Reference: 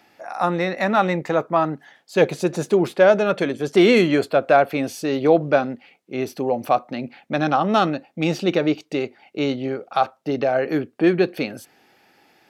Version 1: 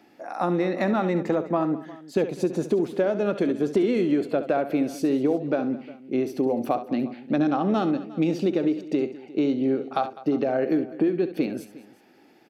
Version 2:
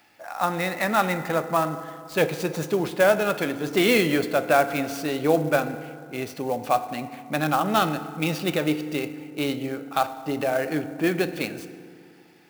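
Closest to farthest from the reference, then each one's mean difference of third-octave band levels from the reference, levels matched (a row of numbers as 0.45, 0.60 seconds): 1, 2; 5.0, 9.0 decibels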